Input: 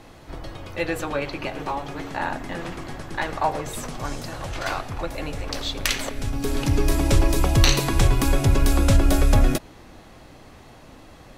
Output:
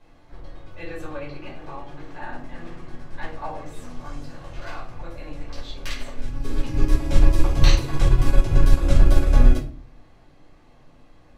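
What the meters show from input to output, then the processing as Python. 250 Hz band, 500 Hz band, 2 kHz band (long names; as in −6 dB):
−4.5 dB, −5.5 dB, −7.0 dB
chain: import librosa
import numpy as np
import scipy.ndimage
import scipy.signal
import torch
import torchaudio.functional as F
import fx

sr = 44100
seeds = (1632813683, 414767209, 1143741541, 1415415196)

y = fx.high_shelf(x, sr, hz=9300.0, db=-10.0)
y = fx.room_shoebox(y, sr, seeds[0], volume_m3=300.0, walls='furnished', distance_m=5.1)
y = fx.upward_expand(y, sr, threshold_db=-10.0, expansion=1.5)
y = F.gain(torch.from_numpy(y), -11.0).numpy()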